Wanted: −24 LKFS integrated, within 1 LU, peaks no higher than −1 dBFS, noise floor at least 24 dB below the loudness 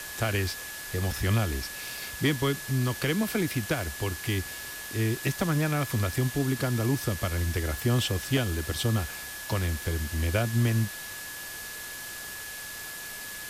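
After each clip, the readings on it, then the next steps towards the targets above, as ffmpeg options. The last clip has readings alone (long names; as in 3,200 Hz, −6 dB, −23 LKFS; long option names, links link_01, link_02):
interfering tone 1,700 Hz; level of the tone −41 dBFS; background noise floor −39 dBFS; target noise floor −54 dBFS; integrated loudness −29.5 LKFS; sample peak −14.5 dBFS; target loudness −24.0 LKFS
→ -af "bandreject=frequency=1700:width=30"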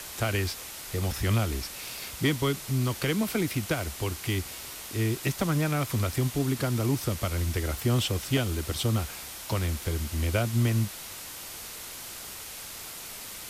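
interfering tone none found; background noise floor −41 dBFS; target noise floor −54 dBFS
→ -af "afftdn=noise_reduction=13:noise_floor=-41"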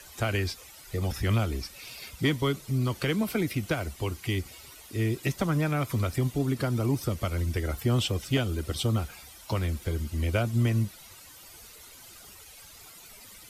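background noise floor −50 dBFS; target noise floor −53 dBFS
→ -af "afftdn=noise_reduction=6:noise_floor=-50"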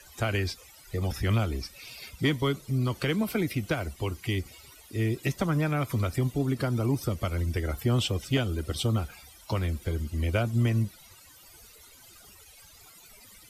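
background noise floor −53 dBFS; integrated loudness −29.0 LKFS; sample peak −15.5 dBFS; target loudness −24.0 LKFS
→ -af "volume=5dB"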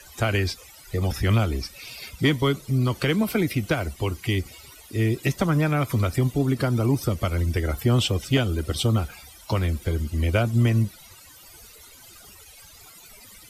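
integrated loudness −24.0 LKFS; sample peak −10.5 dBFS; background noise floor −48 dBFS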